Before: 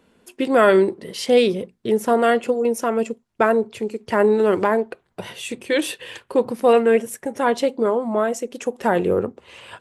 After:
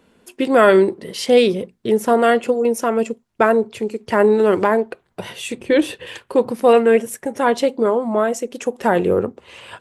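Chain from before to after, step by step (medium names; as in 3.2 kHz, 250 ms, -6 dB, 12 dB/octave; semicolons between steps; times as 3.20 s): 5.61–6.07 s: tilt EQ -2.5 dB/octave; trim +2.5 dB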